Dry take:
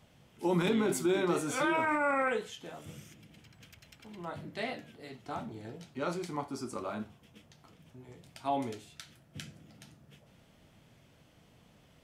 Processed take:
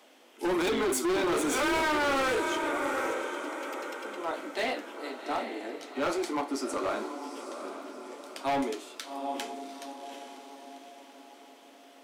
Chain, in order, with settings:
elliptic high-pass filter 270 Hz, stop band 50 dB
feedback delay with all-pass diffusion 786 ms, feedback 46%, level −9 dB
gain into a clipping stage and back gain 33.5 dB
level +8.5 dB

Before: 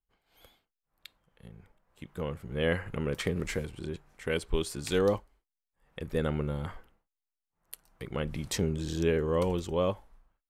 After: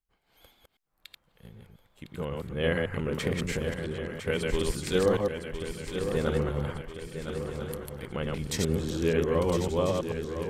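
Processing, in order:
delay that plays each chunk backwards 110 ms, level −2 dB
feedback echo with a long and a short gap by turns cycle 1,343 ms, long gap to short 3 to 1, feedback 51%, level −9 dB

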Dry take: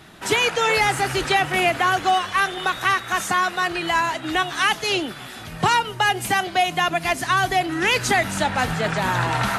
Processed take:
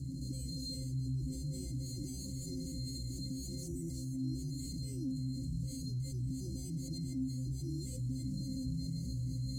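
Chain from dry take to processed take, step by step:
bad sample-rate conversion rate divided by 8×, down filtered, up hold
time-frequency box erased 0:03.58–0:04.17, 2,300–5,400 Hz
in parallel at −8 dB: sine wavefolder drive 19 dB, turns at −0.5 dBFS
on the sum: bass and treble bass −14 dB, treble +13 dB
brickwall limiter −3.5 dBFS, peak gain reduction 12 dB
Chebyshev band-stop filter 210–7,000 Hz, order 3
high-shelf EQ 6,800 Hz −10.5 dB
resonances in every octave C, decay 0.3 s
envelope flattener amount 70%
level +4 dB

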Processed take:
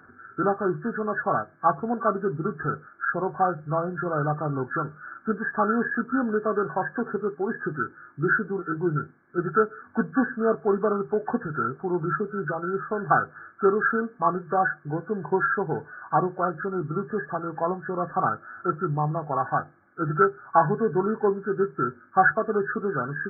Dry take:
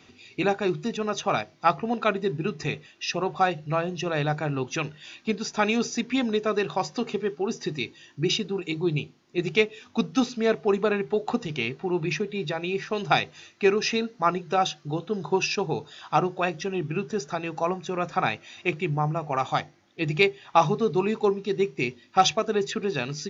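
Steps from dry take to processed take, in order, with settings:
hearing-aid frequency compression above 1,100 Hz 4 to 1

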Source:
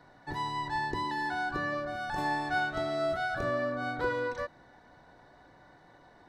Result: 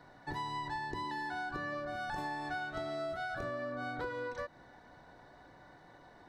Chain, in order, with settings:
downward compressor, threshold −36 dBFS, peak gain reduction 10.5 dB

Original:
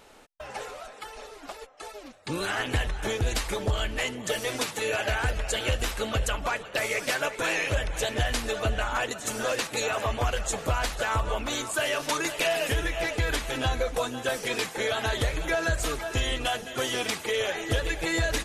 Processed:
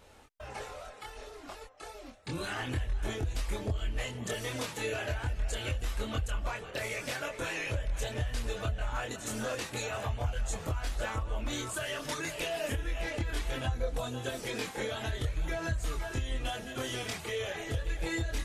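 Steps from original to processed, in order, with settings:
parametric band 78 Hz +9.5 dB 2.4 octaves
downward compressor 5 to 1, threshold −27 dBFS, peak gain reduction 12.5 dB
multi-voice chorus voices 4, 0.28 Hz, delay 25 ms, depth 1.9 ms
level −2 dB

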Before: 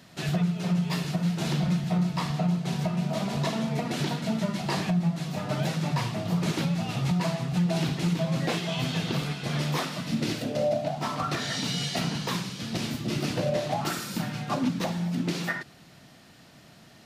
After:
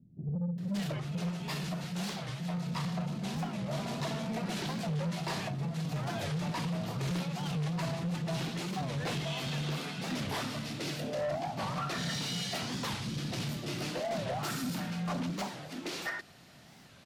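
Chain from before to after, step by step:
0:01.29–0:02.54: low-shelf EQ 430 Hz −7 dB
multiband delay without the direct sound lows, highs 580 ms, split 280 Hz
soft clipping −27 dBFS, distortion −12 dB
wow of a warped record 45 rpm, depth 250 cents
level −2.5 dB

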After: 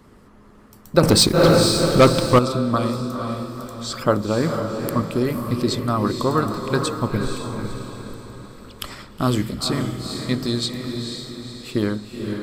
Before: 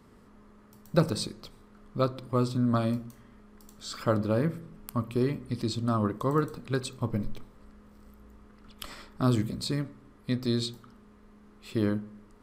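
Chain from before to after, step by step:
harmonic and percussive parts rebalanced percussive +7 dB
feedback delay with all-pass diffusion 492 ms, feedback 47%, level −5 dB
0:01.03–0:02.39: leveller curve on the samples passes 3
level +3 dB

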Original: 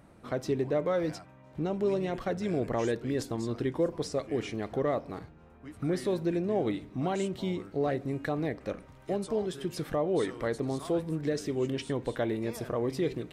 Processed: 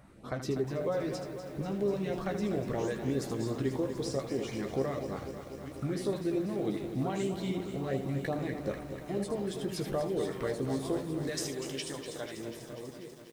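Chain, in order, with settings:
fade-out on the ending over 2.63 s
0:11.27–0:12.37: spectral tilt +3.5 dB per octave
downward compressor, threshold −29 dBFS, peak gain reduction 7 dB
on a send: ambience of single reflections 15 ms −7.5 dB, 79 ms −8.5 dB
on the sum: auto-filter notch saw up 3.1 Hz 280–3,300 Hz
feedback echo at a low word length 245 ms, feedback 80%, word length 9 bits, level −10 dB

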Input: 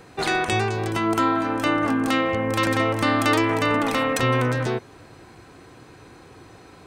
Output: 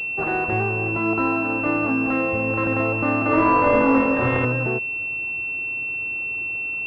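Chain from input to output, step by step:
0:03.29–0:04.45: flutter between parallel walls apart 3.8 metres, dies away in 1.4 s
switching amplifier with a slow clock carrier 2,700 Hz

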